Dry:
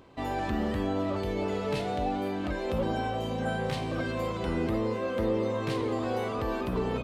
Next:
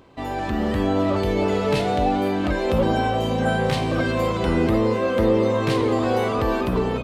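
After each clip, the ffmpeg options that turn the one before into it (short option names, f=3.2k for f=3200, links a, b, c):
-af "dynaudnorm=f=270:g=5:m=6dB,volume=3.5dB"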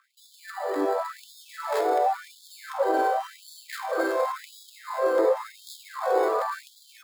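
-filter_complex "[0:a]acrossover=split=360|1100|1800[a][b][c][d];[d]acrusher=samples=15:mix=1:aa=0.000001[e];[a][b][c][e]amix=inputs=4:normalize=0,afftfilt=real='re*gte(b*sr/1024,290*pow(3300/290,0.5+0.5*sin(2*PI*0.92*pts/sr)))':imag='im*gte(b*sr/1024,290*pow(3300/290,0.5+0.5*sin(2*PI*0.92*pts/sr)))':win_size=1024:overlap=0.75"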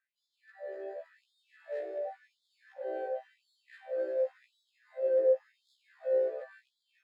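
-filter_complex "[0:a]asplit=3[a][b][c];[a]bandpass=f=530:t=q:w=8,volume=0dB[d];[b]bandpass=f=1.84k:t=q:w=8,volume=-6dB[e];[c]bandpass=f=2.48k:t=q:w=8,volume=-9dB[f];[d][e][f]amix=inputs=3:normalize=0,afftfilt=real='re*1.73*eq(mod(b,3),0)':imag='im*1.73*eq(mod(b,3),0)':win_size=2048:overlap=0.75,volume=-3dB"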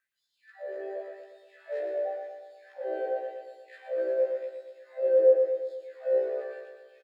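-af "aecho=1:1:118|236|354|472|590|708|826:0.473|0.27|0.154|0.0876|0.0499|0.0285|0.0162,volume=3.5dB"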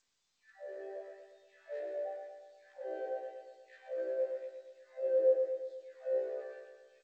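-af "volume=-8dB" -ar 16000 -c:a g722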